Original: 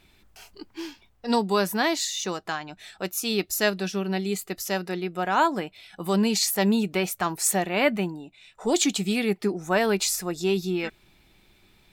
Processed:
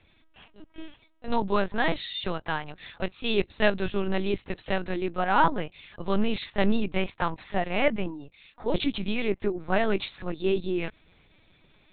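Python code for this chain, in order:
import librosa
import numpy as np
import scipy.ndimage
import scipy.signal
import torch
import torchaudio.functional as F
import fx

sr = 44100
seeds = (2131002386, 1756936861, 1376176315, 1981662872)

y = fx.lpc_vocoder(x, sr, seeds[0], excitation='pitch_kept', order=8)
y = fx.rider(y, sr, range_db=3, speed_s=2.0)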